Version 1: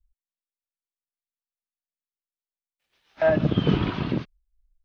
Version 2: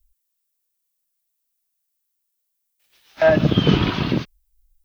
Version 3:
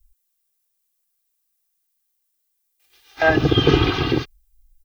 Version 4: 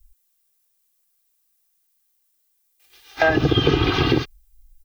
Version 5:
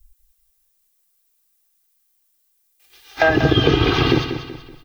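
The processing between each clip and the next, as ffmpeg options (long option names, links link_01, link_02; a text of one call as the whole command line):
ffmpeg -i in.wav -af "aemphasis=mode=production:type=75kf,volume=5dB" out.wav
ffmpeg -i in.wav -af "aecho=1:1:2.5:0.97" out.wav
ffmpeg -i in.wav -af "acompressor=threshold=-18dB:ratio=6,volume=4.5dB" out.wav
ffmpeg -i in.wav -af "aecho=1:1:189|378|567|756:0.335|0.131|0.0509|0.0199,volume=2dB" out.wav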